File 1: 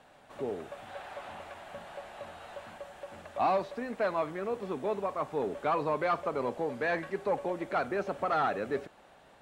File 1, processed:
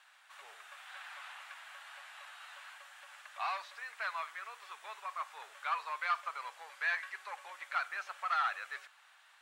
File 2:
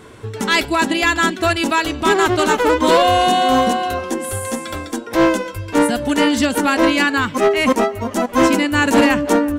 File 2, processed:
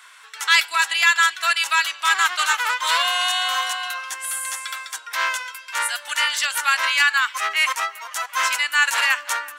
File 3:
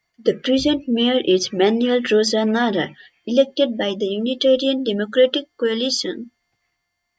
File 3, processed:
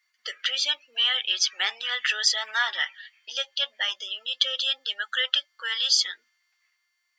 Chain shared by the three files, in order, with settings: HPF 1200 Hz 24 dB/oct; gain +1.5 dB

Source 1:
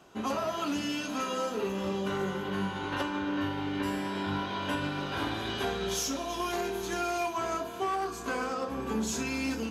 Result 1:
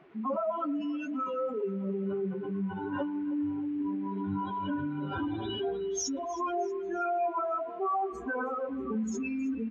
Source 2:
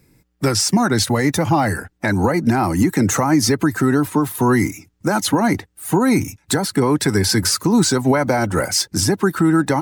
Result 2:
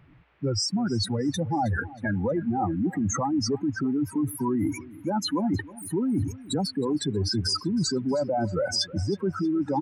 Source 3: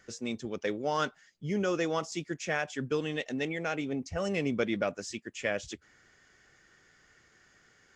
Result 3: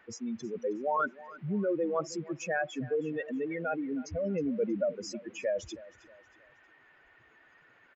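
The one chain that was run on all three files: spectral contrast raised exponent 2.9; dynamic EQ 820 Hz, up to +4 dB, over -33 dBFS, Q 0.95; reverse; compressor, threshold -24 dBFS; reverse; band noise 260–2500 Hz -66 dBFS; feedback echo 0.317 s, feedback 39%, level -19 dB

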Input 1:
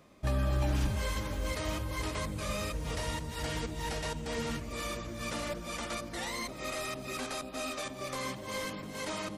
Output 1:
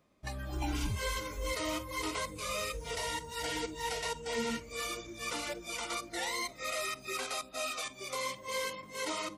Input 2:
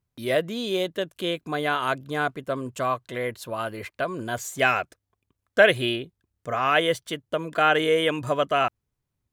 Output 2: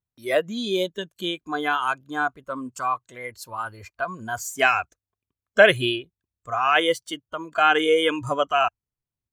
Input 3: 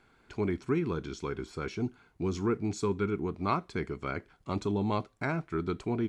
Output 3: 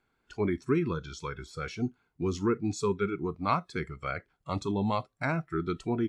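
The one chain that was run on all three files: spectral noise reduction 14 dB; gain +2.5 dB

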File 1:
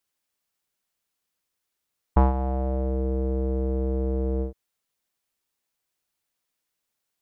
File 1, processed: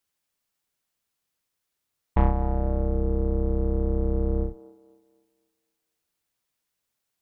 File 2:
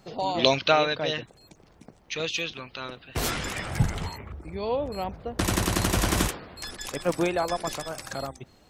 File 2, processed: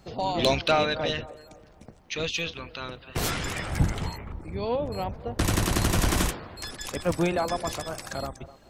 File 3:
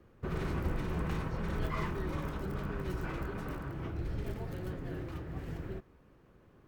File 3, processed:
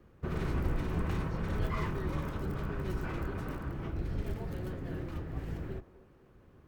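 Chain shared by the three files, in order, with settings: octaver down 1 oct, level -1 dB; soft clip -12.5 dBFS; on a send: band-limited delay 0.254 s, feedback 37%, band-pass 660 Hz, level -15.5 dB

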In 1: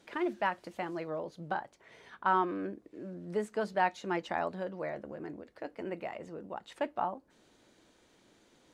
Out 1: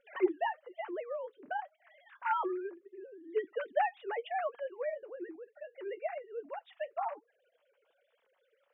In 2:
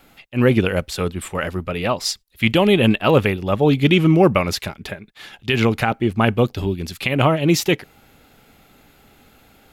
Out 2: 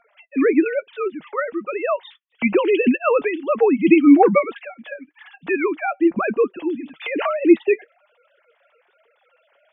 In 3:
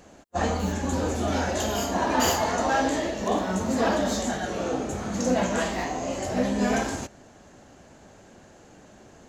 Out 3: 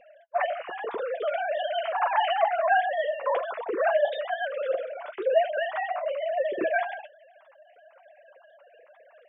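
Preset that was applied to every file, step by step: sine-wave speech; flange 1.1 Hz, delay 4.1 ms, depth 3.2 ms, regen +50%; gain +3 dB

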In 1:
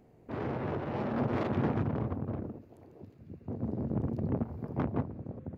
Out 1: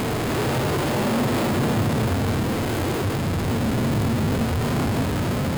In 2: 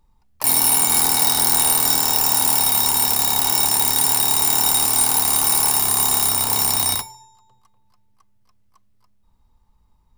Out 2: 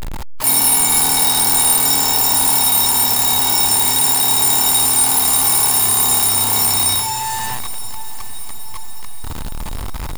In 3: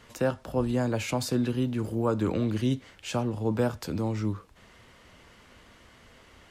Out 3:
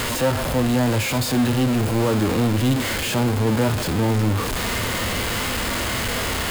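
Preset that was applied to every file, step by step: zero-crossing step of -17 dBFS; notch 5800 Hz, Q 12; harmonic-percussive split harmonic +8 dB; on a send: diffused feedback echo 0.824 s, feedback 57%, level -15.5 dB; on the sum: gain -6.5 dB

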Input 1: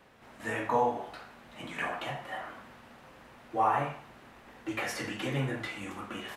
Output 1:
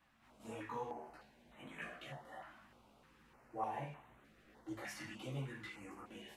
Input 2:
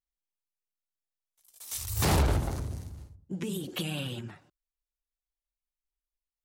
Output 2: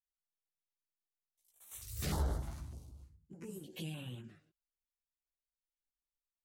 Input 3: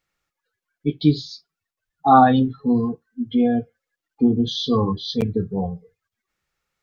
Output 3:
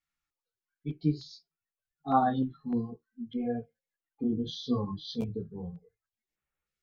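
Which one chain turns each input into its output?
chorus voices 4, 0.82 Hz, delay 16 ms, depth 3.2 ms; stepped notch 3.3 Hz 460–4900 Hz; gain -8.5 dB

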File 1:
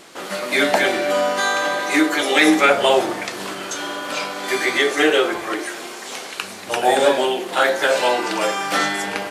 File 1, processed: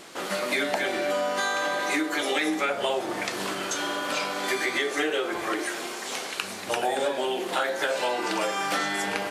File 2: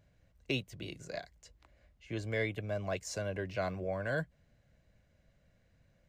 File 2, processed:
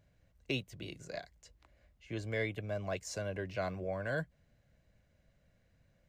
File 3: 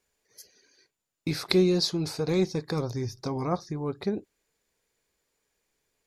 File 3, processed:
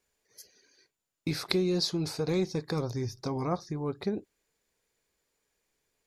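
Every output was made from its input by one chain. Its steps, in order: compressor 6:1, threshold -22 dBFS; gain -1.5 dB

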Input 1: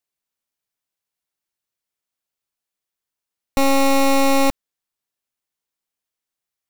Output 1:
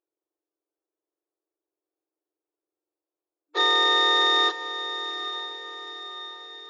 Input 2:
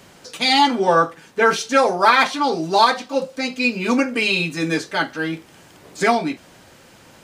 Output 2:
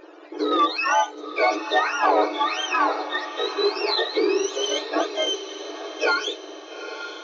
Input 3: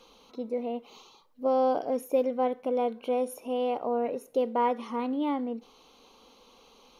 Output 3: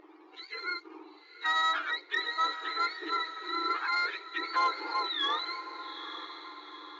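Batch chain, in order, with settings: spectrum mirrored in octaves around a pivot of 1000 Hz; notch 2000 Hz, Q 5.5; low-pass opened by the level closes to 2300 Hz, open at -16.5 dBFS; compressor 1.5:1, threshold -35 dBFS; sample leveller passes 1; FFT band-pass 300–7300 Hz; diffused feedback echo 0.872 s, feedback 49%, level -11 dB; gain +2.5 dB

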